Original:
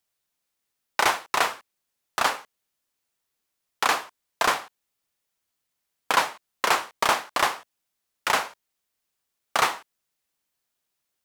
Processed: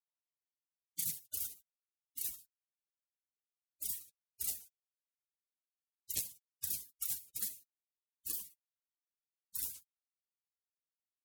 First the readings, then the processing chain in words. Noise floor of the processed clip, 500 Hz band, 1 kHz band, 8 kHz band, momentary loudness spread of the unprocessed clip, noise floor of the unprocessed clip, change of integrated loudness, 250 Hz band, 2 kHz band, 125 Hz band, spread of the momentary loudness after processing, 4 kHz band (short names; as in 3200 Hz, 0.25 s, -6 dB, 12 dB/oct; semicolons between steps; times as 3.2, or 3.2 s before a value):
under -85 dBFS, -38.5 dB, under -40 dB, -7.0 dB, 11 LU, -81 dBFS, -14.5 dB, -23.5 dB, -37.0 dB, -13.0 dB, 13 LU, -22.0 dB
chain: high-pass sweep 3400 Hz -> 79 Hz, 0.04–1.6; spectral gate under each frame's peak -30 dB weak; core saturation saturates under 4000 Hz; gain +6 dB